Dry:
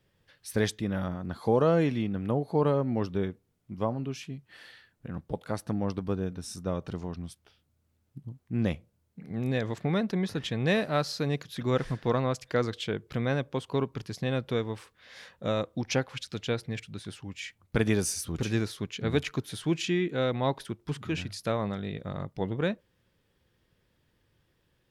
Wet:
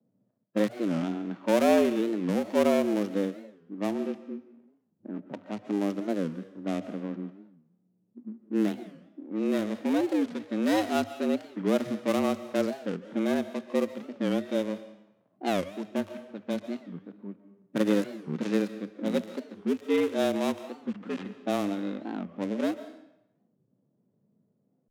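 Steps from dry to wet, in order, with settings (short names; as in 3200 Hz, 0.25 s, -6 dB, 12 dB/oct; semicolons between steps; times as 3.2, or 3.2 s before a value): switching dead time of 0.28 ms; low-pass opened by the level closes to 430 Hz, open at -25 dBFS; frequency shift +100 Hz; on a send at -15.5 dB: reverb RT60 0.85 s, pre-delay 0.1 s; on the sum: harmonic-percussive split harmonic +9 dB; record warp 45 rpm, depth 250 cents; gain -6 dB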